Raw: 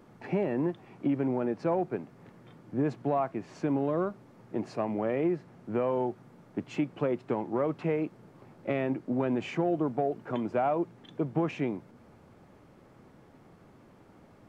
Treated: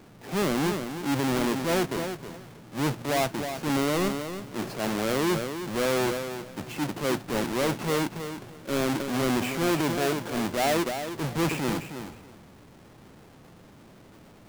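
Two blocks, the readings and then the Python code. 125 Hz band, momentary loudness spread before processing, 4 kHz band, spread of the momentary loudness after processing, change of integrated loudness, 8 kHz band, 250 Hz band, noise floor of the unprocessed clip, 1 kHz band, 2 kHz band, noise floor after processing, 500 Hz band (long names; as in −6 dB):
+4.0 dB, 9 LU, +18.5 dB, 10 LU, +3.5 dB, can't be measured, +2.5 dB, −57 dBFS, +4.0 dB, +11.5 dB, −52 dBFS, +2.0 dB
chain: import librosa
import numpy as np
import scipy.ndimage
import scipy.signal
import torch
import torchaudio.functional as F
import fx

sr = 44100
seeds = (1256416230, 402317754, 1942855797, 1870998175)

y = fx.halfwave_hold(x, sr)
y = fx.echo_feedback(y, sr, ms=315, feedback_pct=16, wet_db=-10)
y = fx.transient(y, sr, attack_db=-8, sustain_db=5)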